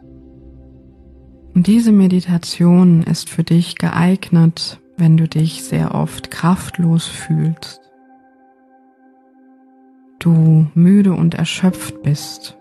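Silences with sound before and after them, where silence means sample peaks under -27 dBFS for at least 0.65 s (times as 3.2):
7.73–10.21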